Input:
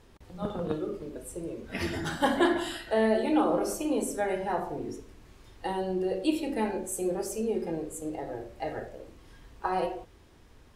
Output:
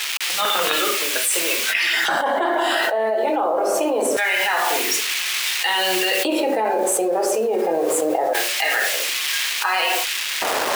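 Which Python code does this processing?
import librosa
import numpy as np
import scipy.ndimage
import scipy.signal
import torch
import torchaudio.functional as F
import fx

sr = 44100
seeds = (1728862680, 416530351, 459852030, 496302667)

y = fx.high_shelf(x, sr, hz=3000.0, db=-12.0)
y = fx.quant_dither(y, sr, seeds[0], bits=10, dither='none')
y = fx.filter_lfo_highpass(y, sr, shape='square', hz=0.24, low_hz=650.0, high_hz=2500.0, q=1.5)
y = fx.env_flatten(y, sr, amount_pct=100)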